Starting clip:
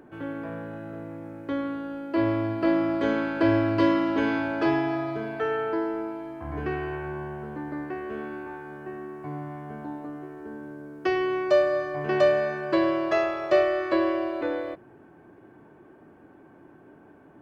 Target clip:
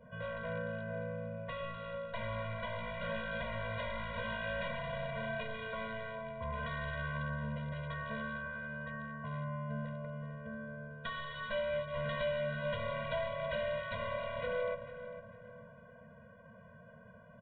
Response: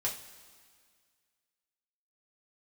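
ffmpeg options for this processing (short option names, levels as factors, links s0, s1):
-filter_complex "[0:a]adynamicequalizer=threshold=0.00447:dfrequency=1400:dqfactor=3.3:tfrequency=1400:tqfactor=3.3:attack=5:release=100:ratio=0.375:range=2.5:mode=boostabove:tftype=bell,acrossover=split=230|1400[s0][s1][s2];[s0]acompressor=threshold=0.00794:ratio=4[s3];[s1]acompressor=threshold=0.0251:ratio=4[s4];[s2]acompressor=threshold=0.00631:ratio=4[s5];[s3][s4][s5]amix=inputs=3:normalize=0,aresample=8000,aeval=exprs='0.0316*(abs(mod(val(0)/0.0316+3,4)-2)-1)':c=same,aresample=44100,asplit=2[s6][s7];[s7]adelay=449,lowpass=f=2300:p=1,volume=0.282,asplit=2[s8][s9];[s9]adelay=449,lowpass=f=2300:p=1,volume=0.39,asplit=2[s10][s11];[s11]adelay=449,lowpass=f=2300:p=1,volume=0.39,asplit=2[s12][s13];[s13]adelay=449,lowpass=f=2300:p=1,volume=0.39[s14];[s6][s8][s10][s12][s14]amix=inputs=5:normalize=0,asplit=2[s15][s16];[1:a]atrim=start_sample=2205,lowpass=1100,adelay=82[s17];[s16][s17]afir=irnorm=-1:irlink=0,volume=0.15[s18];[s15][s18]amix=inputs=2:normalize=0,afftfilt=real='re*eq(mod(floor(b*sr/1024/230),2),0)':imag='im*eq(mod(floor(b*sr/1024/230),2),0)':win_size=1024:overlap=0.75,volume=1.12"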